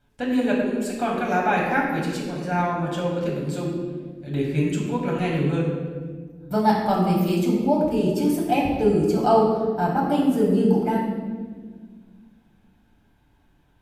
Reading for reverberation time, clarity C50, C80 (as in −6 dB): 1.6 s, 1.5 dB, 3.5 dB